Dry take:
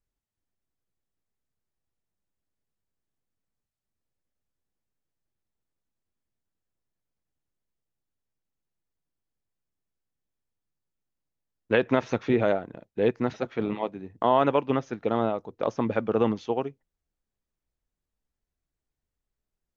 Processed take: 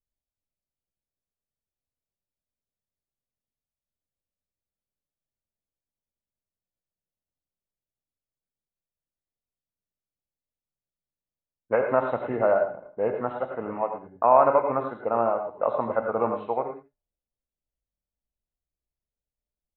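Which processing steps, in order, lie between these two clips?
knee-point frequency compression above 1.5 kHz 1.5:1; level-controlled noise filter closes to 370 Hz, open at -22.5 dBFS; high-order bell 850 Hz +12.5 dB; on a send: delay 86 ms -15 dB; on the sum: gated-style reverb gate 130 ms rising, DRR 5 dB; trim -8.5 dB

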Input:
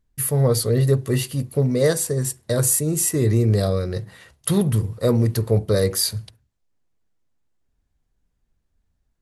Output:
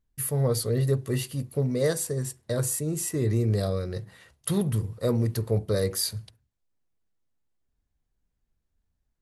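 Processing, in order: 2.22–3.31 s: treble shelf 6.7 kHz -5.5 dB; trim -6.5 dB

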